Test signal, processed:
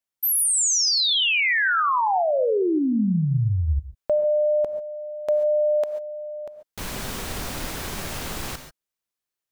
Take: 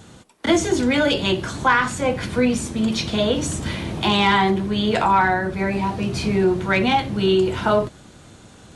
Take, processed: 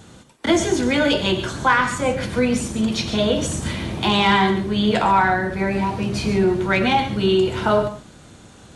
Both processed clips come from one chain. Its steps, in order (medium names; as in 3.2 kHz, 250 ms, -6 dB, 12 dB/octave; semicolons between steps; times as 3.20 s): gated-style reverb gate 160 ms rising, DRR 9 dB